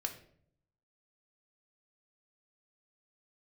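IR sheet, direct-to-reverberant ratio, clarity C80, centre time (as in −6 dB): 3.5 dB, 14.0 dB, 12 ms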